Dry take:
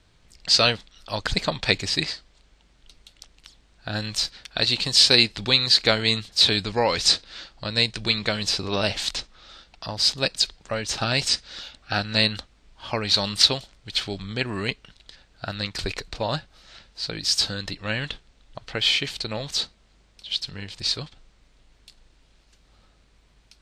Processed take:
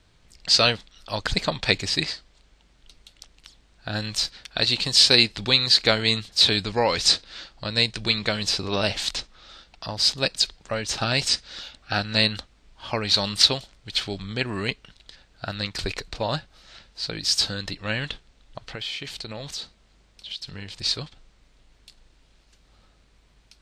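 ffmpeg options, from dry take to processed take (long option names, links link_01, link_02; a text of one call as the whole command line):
ffmpeg -i in.wav -filter_complex "[0:a]asettb=1/sr,asplit=3[link_01][link_02][link_03];[link_01]atrim=end=18.604[link_04];[link_02]atrim=start=18.6:end=20.82,asetpts=PTS-STARTPTS,afade=type=in:duration=0.004:curve=qsin,afade=type=out:start_time=2.216:duration=0.004:curve=qsin,acompressor=threshold=-32dB:ratio=3:attack=3.2:release=140:knee=1:detection=peak[link_05];[link_03]atrim=start=20.816[link_06];[link_04][link_05]acrossfade=duration=0.004:curve1=hsin:curve2=qsin[link_07];[link_07][link_06]acrossfade=duration=0.004:curve1=qsin:curve2=hsin" out.wav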